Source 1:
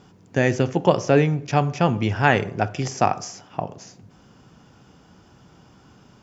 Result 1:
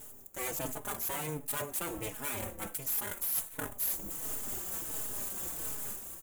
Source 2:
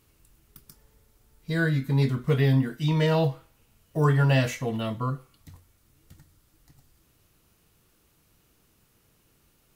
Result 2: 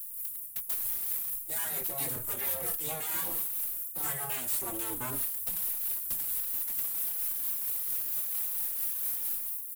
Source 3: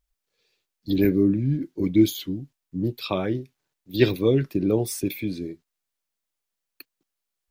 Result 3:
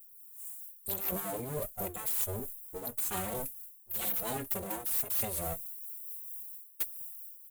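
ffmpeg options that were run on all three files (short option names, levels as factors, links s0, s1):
-filter_complex "[0:a]aeval=exprs='abs(val(0))':c=same,dynaudnorm=f=100:g=9:m=3.76,aexciter=amount=10.6:drive=9:freq=7700,afftfilt=real='re*lt(hypot(re,im),0.562)':imag='im*lt(hypot(re,im),0.562)':win_size=1024:overlap=0.75,areverse,acompressor=threshold=0.0355:ratio=10,areverse,highshelf=f=9100:g=10.5,asoftclip=type=tanh:threshold=0.0631,tremolo=f=4.4:d=0.3,asplit=2[s0][s1];[s1]adelay=4.2,afreqshift=-1.4[s2];[s0][s2]amix=inputs=2:normalize=1,volume=1.12"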